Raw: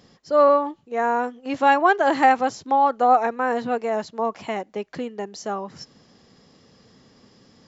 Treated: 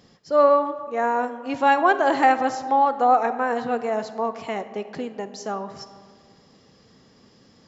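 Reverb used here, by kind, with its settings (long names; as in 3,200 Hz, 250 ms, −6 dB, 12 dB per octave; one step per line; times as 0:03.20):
comb and all-pass reverb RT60 1.9 s, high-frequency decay 0.45×, pre-delay 5 ms, DRR 11 dB
level −1 dB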